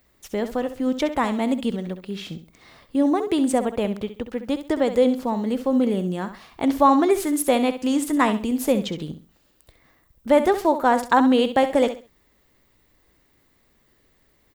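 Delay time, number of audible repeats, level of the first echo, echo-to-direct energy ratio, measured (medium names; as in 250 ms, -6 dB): 66 ms, 3, -11.0 dB, -10.5 dB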